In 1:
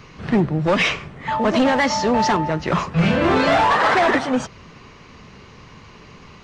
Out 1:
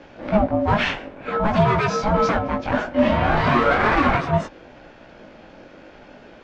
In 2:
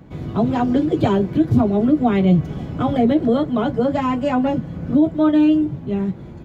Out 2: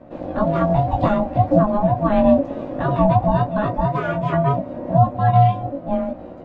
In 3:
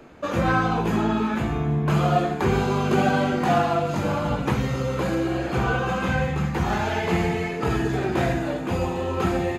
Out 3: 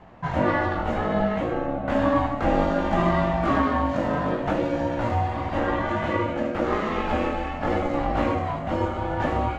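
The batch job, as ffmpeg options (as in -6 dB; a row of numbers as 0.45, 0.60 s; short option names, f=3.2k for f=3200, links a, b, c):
-af "flanger=delay=16:depth=5.1:speed=0.62,aeval=exprs='val(0)*sin(2*PI*420*n/s)':c=same,aemphasis=mode=reproduction:type=75fm,volume=4.5dB"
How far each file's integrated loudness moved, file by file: -1.5, -0.5, -1.0 LU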